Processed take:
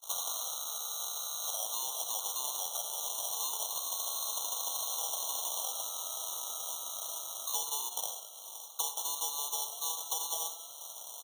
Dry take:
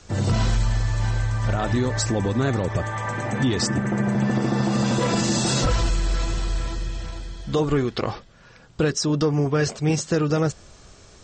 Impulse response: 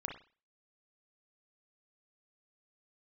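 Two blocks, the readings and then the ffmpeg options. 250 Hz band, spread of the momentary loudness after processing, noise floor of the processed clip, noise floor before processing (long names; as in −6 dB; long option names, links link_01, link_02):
below −40 dB, 4 LU, −48 dBFS, −49 dBFS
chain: -filter_complex "[0:a]acrusher=samples=34:mix=1:aa=0.000001,aexciter=amount=5.2:drive=9.3:freq=3900,acompressor=threshold=-29dB:ratio=6,asplit=6[link_01][link_02][link_03][link_04][link_05][link_06];[link_02]adelay=192,afreqshift=-140,volume=-12dB[link_07];[link_03]adelay=384,afreqshift=-280,volume=-18.9dB[link_08];[link_04]adelay=576,afreqshift=-420,volume=-25.9dB[link_09];[link_05]adelay=768,afreqshift=-560,volume=-32.8dB[link_10];[link_06]adelay=960,afreqshift=-700,volume=-39.7dB[link_11];[link_01][link_07][link_08][link_09][link_10][link_11]amix=inputs=6:normalize=0,agate=range=-23dB:threshold=-46dB:ratio=16:detection=peak,highpass=frequency=730:width=0.5412,highpass=frequency=730:width=1.3066,highshelf=frequency=6700:gain=-4,asplit=2[link_12][link_13];[1:a]atrim=start_sample=2205,adelay=72[link_14];[link_13][link_14]afir=irnorm=-1:irlink=0,volume=-9.5dB[link_15];[link_12][link_15]amix=inputs=2:normalize=0,afftfilt=real='re*eq(mod(floor(b*sr/1024/1400),2),0)':imag='im*eq(mod(floor(b*sr/1024/1400),2),0)':win_size=1024:overlap=0.75,volume=3dB"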